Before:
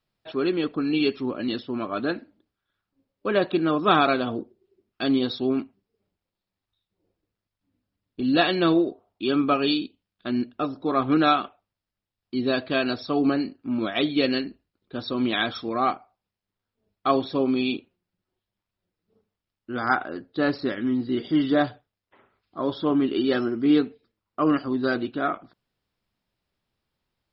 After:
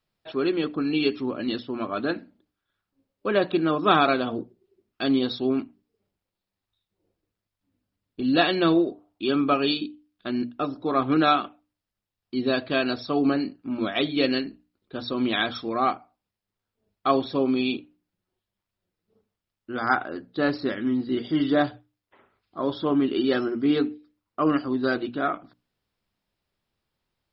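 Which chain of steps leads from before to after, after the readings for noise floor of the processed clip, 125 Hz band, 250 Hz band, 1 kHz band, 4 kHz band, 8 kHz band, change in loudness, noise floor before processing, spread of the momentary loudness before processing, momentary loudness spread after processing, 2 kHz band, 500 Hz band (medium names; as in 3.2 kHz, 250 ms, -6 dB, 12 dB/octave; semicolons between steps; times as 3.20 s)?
under -85 dBFS, -0.5 dB, -1.0 dB, 0.0 dB, 0.0 dB, no reading, -0.5 dB, under -85 dBFS, 11 LU, 11 LU, 0.0 dB, 0.0 dB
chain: hum notches 60/120/180/240/300 Hz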